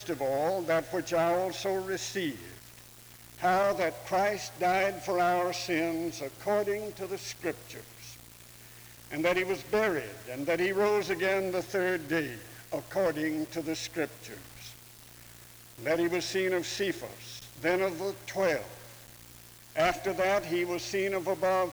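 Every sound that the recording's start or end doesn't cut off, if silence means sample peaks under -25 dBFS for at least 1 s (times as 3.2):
3.44–7.51
9.14–14.05
15.87–18.57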